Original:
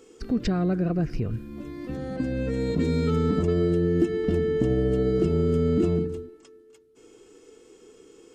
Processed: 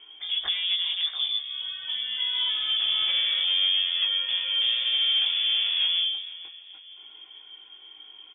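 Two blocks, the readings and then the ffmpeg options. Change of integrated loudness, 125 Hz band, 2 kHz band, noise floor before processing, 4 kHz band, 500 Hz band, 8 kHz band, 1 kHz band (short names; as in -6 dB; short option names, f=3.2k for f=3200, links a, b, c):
+2.0 dB, under -40 dB, +7.5 dB, -54 dBFS, +27.0 dB, under -30 dB, n/a, -7.5 dB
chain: -af "lowshelf=f=100:g=-8.5,asoftclip=type=tanh:threshold=-26.5dB,flanger=delay=17:depth=3.4:speed=0.69,aecho=1:1:468|936|1404|1872:0.133|0.06|0.027|0.0122,lowpass=f=3.1k:t=q:w=0.5098,lowpass=f=3.1k:t=q:w=0.6013,lowpass=f=3.1k:t=q:w=0.9,lowpass=f=3.1k:t=q:w=2.563,afreqshift=-3600,volume=7.5dB"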